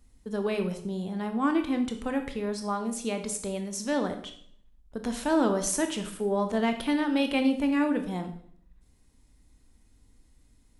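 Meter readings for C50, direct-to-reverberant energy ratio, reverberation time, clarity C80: 10.0 dB, 6.0 dB, 0.60 s, 13.5 dB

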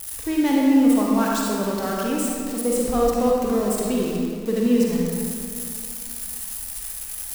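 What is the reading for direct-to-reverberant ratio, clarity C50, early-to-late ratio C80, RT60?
-3.0 dB, -2.0 dB, -0.5 dB, 2.4 s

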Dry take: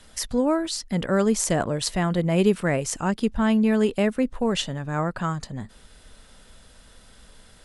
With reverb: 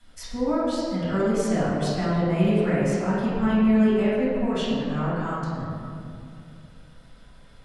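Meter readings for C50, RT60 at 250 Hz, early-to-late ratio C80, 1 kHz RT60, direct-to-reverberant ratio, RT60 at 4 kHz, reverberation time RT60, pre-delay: -3.0 dB, 3.0 s, -0.5 dB, 2.3 s, -12.5 dB, 1.3 s, 2.5 s, 4 ms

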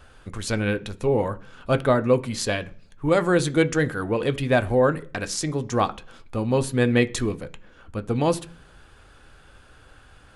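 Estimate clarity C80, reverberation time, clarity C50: 25.5 dB, 0.50 s, 20.5 dB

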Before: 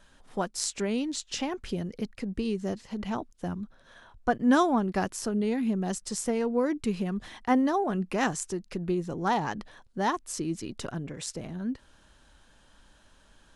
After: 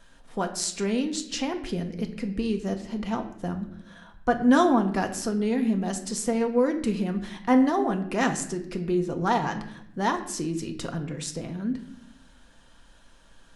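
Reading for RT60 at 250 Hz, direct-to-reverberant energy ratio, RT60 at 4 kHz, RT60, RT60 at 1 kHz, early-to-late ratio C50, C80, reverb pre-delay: 1.1 s, 5.0 dB, 0.55 s, 0.75 s, 0.65 s, 11.0 dB, 13.5 dB, 4 ms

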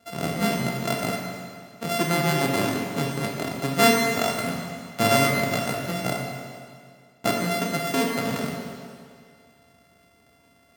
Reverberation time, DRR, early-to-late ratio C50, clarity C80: 2.1 s, -0.5 dB, 1.5 dB, 2.5 dB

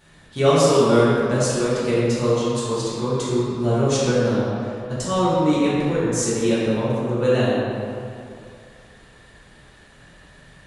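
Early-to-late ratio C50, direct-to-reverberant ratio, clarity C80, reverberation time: -4.0 dB, -10.0 dB, -1.5 dB, 2.5 s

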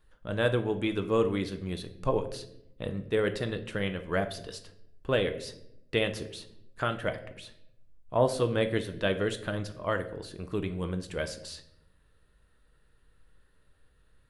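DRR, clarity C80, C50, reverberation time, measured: 7.5 dB, 16.0 dB, 12.5 dB, 0.75 s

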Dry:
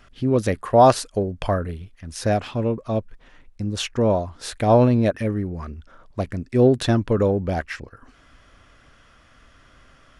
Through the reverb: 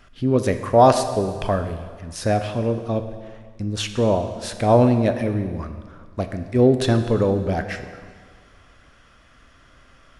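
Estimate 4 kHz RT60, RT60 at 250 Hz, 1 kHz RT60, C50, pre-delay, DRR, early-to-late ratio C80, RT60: 1.7 s, 1.7 s, 1.8 s, 9.5 dB, 6 ms, 8.0 dB, 10.5 dB, 1.8 s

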